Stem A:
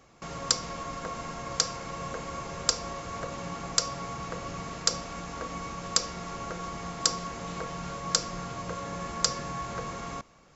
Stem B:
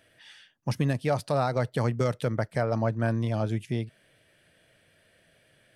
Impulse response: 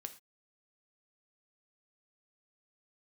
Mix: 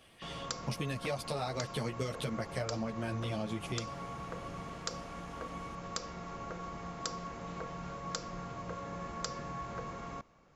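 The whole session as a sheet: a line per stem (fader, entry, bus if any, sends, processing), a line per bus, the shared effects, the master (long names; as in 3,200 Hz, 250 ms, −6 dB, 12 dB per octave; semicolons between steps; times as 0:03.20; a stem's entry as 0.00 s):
−5.0 dB, 0.00 s, no send, high-shelf EQ 3,800 Hz −11.5 dB
−1.5 dB, 0.00 s, no send, high shelf with overshoot 2,000 Hz +7 dB, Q 1.5; string-ensemble chorus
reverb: not used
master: downward compressor, threshold −32 dBFS, peak gain reduction 8 dB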